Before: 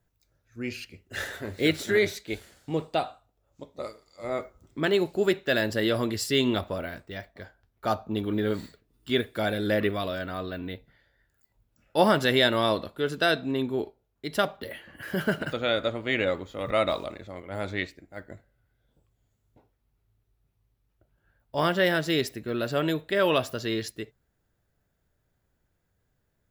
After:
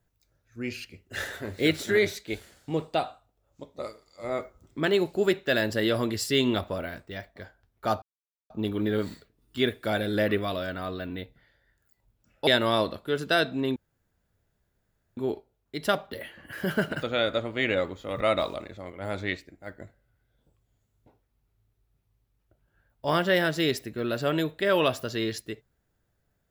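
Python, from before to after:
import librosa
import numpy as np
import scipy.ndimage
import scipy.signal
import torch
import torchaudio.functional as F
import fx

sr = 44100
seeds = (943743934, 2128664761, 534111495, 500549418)

y = fx.edit(x, sr, fx.insert_silence(at_s=8.02, length_s=0.48),
    fx.cut(start_s=11.99, length_s=0.39),
    fx.insert_room_tone(at_s=13.67, length_s=1.41), tone=tone)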